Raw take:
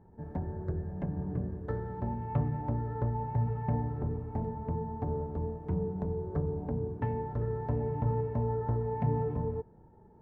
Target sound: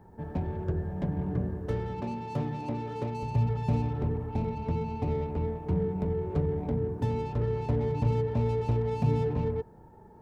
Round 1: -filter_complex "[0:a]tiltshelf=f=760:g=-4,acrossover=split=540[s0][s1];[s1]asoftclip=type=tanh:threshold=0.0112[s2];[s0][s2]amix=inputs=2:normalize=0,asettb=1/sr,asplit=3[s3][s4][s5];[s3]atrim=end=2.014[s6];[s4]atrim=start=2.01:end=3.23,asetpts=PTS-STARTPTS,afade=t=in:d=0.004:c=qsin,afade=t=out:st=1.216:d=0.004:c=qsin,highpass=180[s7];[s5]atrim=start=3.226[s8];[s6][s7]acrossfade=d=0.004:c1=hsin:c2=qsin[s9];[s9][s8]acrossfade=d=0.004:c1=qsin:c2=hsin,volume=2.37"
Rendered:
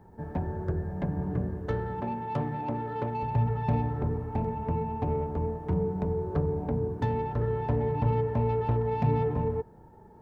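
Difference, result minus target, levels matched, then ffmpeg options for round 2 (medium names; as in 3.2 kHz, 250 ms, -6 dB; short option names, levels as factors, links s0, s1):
saturation: distortion -9 dB
-filter_complex "[0:a]tiltshelf=f=760:g=-4,acrossover=split=540[s0][s1];[s1]asoftclip=type=tanh:threshold=0.00335[s2];[s0][s2]amix=inputs=2:normalize=0,asettb=1/sr,asplit=3[s3][s4][s5];[s3]atrim=end=2.014[s6];[s4]atrim=start=2.01:end=3.23,asetpts=PTS-STARTPTS,afade=t=in:d=0.004:c=qsin,afade=t=out:st=1.216:d=0.004:c=qsin,highpass=180[s7];[s5]atrim=start=3.226[s8];[s6][s7]acrossfade=d=0.004:c1=hsin:c2=qsin[s9];[s9][s8]acrossfade=d=0.004:c1=qsin:c2=hsin,volume=2.37"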